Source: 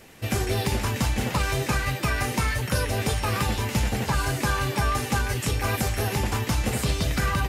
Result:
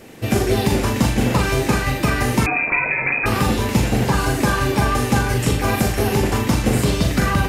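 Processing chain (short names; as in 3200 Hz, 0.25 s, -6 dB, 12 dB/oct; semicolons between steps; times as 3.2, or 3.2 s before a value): flutter echo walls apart 7.1 m, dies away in 0.41 s; 2.46–3.26 inverted band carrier 2500 Hz; bell 310 Hz +7.5 dB 2.4 oct; gain +3 dB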